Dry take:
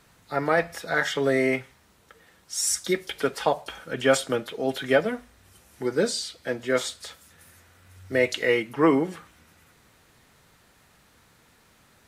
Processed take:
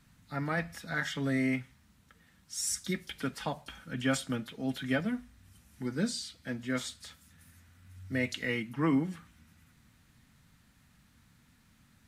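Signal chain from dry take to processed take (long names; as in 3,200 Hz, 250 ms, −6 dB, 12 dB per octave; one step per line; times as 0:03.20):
drawn EQ curve 250 Hz 0 dB, 400 Hz −17 dB, 1,700 Hz −8 dB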